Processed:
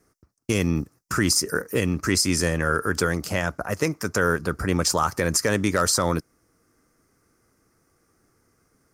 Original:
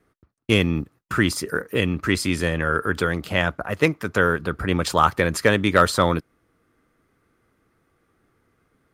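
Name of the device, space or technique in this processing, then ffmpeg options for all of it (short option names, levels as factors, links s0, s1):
over-bright horn tweeter: -af "highshelf=f=4400:t=q:w=3:g=8,alimiter=limit=0.335:level=0:latency=1:release=83"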